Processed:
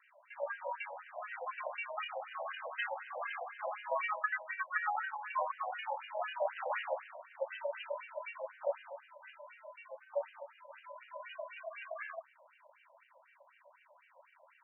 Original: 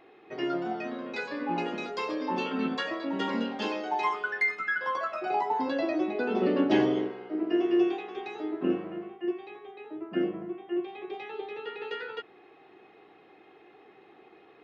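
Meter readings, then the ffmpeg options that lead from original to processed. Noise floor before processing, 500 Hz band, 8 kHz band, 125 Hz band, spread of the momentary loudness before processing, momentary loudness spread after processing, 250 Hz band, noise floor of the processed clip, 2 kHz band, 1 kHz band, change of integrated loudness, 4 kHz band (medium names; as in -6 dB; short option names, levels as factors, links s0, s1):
-57 dBFS, -9.5 dB, no reading, under -40 dB, 13 LU, 16 LU, under -40 dB, -67 dBFS, -6.5 dB, -6.5 dB, -9.5 dB, -11.0 dB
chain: -filter_complex "[0:a]aeval=exprs='val(0)*sin(2*PI*220*n/s)':c=same,asplit=2[s0][s1];[s1]acrusher=bits=3:mode=log:mix=0:aa=0.000001,volume=0.596[s2];[s0][s2]amix=inputs=2:normalize=0,aemphasis=mode=production:type=50fm,afftfilt=real='re*between(b*sr/1024,700*pow(2200/700,0.5+0.5*sin(2*PI*4*pts/sr))/1.41,700*pow(2200/700,0.5+0.5*sin(2*PI*4*pts/sr))*1.41)':imag='im*between(b*sr/1024,700*pow(2200/700,0.5+0.5*sin(2*PI*4*pts/sr))/1.41,700*pow(2200/700,0.5+0.5*sin(2*PI*4*pts/sr))*1.41)':win_size=1024:overlap=0.75,volume=0.708"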